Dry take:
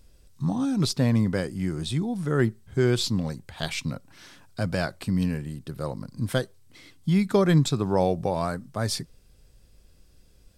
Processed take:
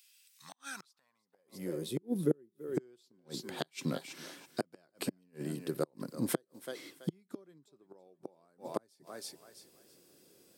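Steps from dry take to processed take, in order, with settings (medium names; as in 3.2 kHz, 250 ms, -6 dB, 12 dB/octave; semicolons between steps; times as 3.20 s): time-frequency box 1.22–2.75 s, 570–9700 Hz -11 dB; thinning echo 330 ms, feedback 27%, high-pass 340 Hz, level -16 dB; inverted gate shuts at -17 dBFS, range -40 dB; treble shelf 10 kHz +11.5 dB; high-pass sweep 2.6 kHz -> 350 Hz, 0.22–2.12 s; peaking EQ 150 Hz +8 dB 1 oct; trim -2 dB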